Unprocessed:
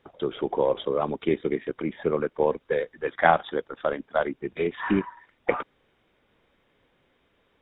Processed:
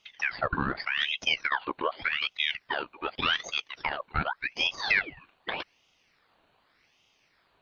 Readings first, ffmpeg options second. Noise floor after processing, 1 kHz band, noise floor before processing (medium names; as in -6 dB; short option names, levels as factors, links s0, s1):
-69 dBFS, -5.0 dB, -68 dBFS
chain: -af "alimiter=limit=0.188:level=0:latency=1:release=74,equalizer=f=500:t=o:w=0.33:g=-11,equalizer=f=800:t=o:w=0.33:g=4,equalizer=f=1250:t=o:w=0.33:g=-11,aeval=exprs='val(0)*sin(2*PI*1800*n/s+1800*0.65/0.85*sin(2*PI*0.85*n/s))':c=same,volume=1.5"